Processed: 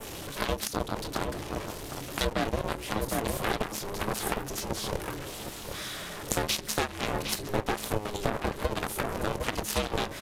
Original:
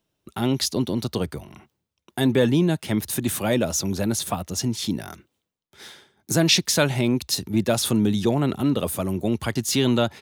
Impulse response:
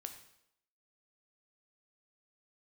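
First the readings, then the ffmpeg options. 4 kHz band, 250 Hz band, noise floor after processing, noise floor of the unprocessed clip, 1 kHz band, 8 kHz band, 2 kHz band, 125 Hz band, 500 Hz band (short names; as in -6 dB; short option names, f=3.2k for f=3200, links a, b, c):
-8.0 dB, -13.5 dB, -41 dBFS, -78 dBFS, 0.0 dB, -8.0 dB, -3.0 dB, -11.0 dB, -7.0 dB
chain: -filter_complex "[0:a]aeval=exprs='val(0)+0.5*0.0398*sgn(val(0))':c=same,bandreject=f=50:t=h:w=6,bandreject=f=100:t=h:w=6,bandreject=f=150:t=h:w=6,bandreject=f=200:t=h:w=6,bandreject=f=250:t=h:w=6,bandreject=f=300:t=h:w=6,bandreject=f=350:t=h:w=6,adynamicequalizer=threshold=0.0141:dfrequency=4400:dqfactor=0.84:tfrequency=4400:tqfactor=0.84:attack=5:release=100:ratio=0.375:range=2:mode=cutabove:tftype=bell,asplit=2[a][b];[b]adelay=26,volume=-10.5dB[c];[a][c]amix=inputs=2:normalize=0,acrossover=split=160|1300|2900[d][e][f][g];[d]alimiter=level_in=6dB:limit=-24dB:level=0:latency=1,volume=-6dB[h];[h][e][f][g]amix=inputs=4:normalize=0,aeval=exprs='0.473*(cos(1*acos(clip(val(0)/0.473,-1,1)))-cos(1*PI/2))+0.0422*(cos(4*acos(clip(val(0)/0.473,-1,1)))-cos(4*PI/2))+0.119*(cos(5*acos(clip(val(0)/0.473,-1,1)))-cos(5*PI/2))+0.211*(cos(7*acos(clip(val(0)/0.473,-1,1)))-cos(7*PI/2))':c=same,aeval=exprs='val(0)*sin(2*PI*210*n/s)':c=same,asplit=2[i][j];[j]adelay=758,volume=-9dB,highshelf=f=4k:g=-17.1[k];[i][k]amix=inputs=2:normalize=0,acompressor=threshold=-24dB:ratio=6,aresample=32000,aresample=44100"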